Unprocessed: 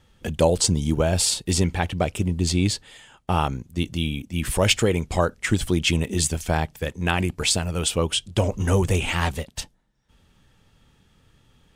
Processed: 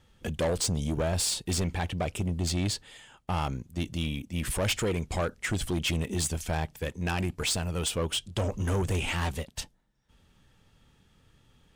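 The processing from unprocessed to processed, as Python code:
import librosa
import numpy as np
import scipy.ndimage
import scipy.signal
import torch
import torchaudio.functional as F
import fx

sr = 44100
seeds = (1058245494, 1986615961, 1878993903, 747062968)

y = 10.0 ** (-19.5 / 20.0) * np.tanh(x / 10.0 ** (-19.5 / 20.0))
y = y * 10.0 ** (-3.5 / 20.0)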